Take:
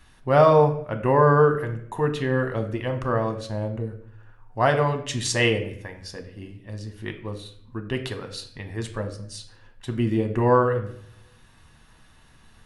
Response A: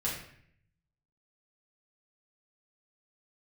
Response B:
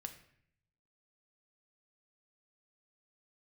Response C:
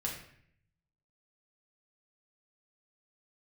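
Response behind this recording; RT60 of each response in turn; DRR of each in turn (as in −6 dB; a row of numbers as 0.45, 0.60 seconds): B; 0.60, 0.65, 0.60 seconds; −7.5, 6.0, −3.0 decibels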